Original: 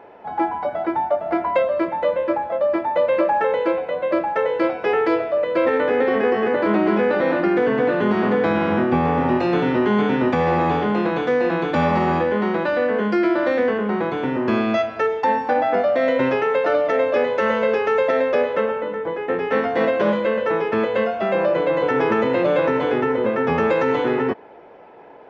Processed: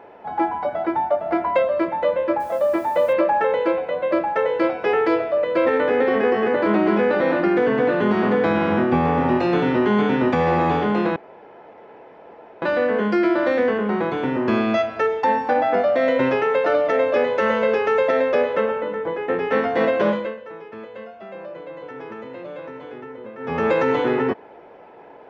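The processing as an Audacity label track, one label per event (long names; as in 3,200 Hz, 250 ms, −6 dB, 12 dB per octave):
2.400000	3.130000	bit-depth reduction 8 bits, dither none
11.160000	12.620000	fill with room tone
20.060000	23.700000	duck −16.5 dB, fades 0.32 s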